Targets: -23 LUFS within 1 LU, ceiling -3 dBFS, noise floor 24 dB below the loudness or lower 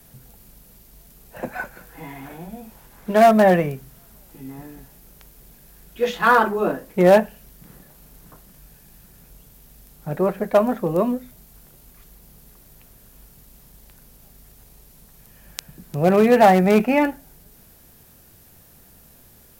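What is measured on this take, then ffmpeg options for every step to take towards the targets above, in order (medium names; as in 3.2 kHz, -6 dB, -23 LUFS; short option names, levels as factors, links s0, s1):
loudness -18.0 LUFS; peak level -2.0 dBFS; loudness target -23.0 LUFS
-> -af "volume=0.562"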